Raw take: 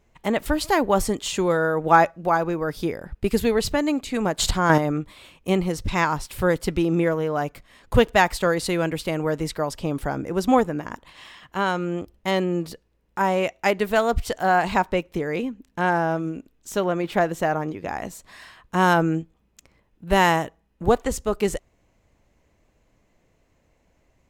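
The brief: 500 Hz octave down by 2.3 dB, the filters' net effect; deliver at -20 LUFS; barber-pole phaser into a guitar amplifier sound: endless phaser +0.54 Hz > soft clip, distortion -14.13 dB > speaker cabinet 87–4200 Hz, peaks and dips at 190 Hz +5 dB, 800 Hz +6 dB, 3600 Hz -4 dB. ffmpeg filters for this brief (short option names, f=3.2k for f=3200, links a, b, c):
-filter_complex "[0:a]equalizer=f=500:t=o:g=-4,asplit=2[a][b];[b]afreqshift=0.54[c];[a][c]amix=inputs=2:normalize=1,asoftclip=threshold=-18.5dB,highpass=87,equalizer=f=190:t=q:w=4:g=5,equalizer=f=800:t=q:w=4:g=6,equalizer=f=3.6k:t=q:w=4:g=-4,lowpass=f=4.2k:w=0.5412,lowpass=f=4.2k:w=1.3066,volume=8dB"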